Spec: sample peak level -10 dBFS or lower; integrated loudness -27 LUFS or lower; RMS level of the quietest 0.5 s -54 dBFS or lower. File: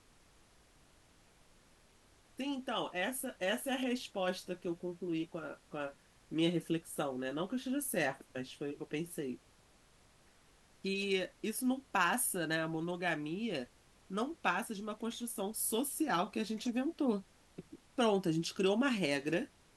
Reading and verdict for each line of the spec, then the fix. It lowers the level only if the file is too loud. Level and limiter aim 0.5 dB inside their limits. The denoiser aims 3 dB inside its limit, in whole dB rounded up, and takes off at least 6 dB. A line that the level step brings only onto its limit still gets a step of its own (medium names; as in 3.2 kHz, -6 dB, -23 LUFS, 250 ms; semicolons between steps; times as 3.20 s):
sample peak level -17.5 dBFS: pass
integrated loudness -36.5 LUFS: pass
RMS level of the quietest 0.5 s -65 dBFS: pass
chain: none needed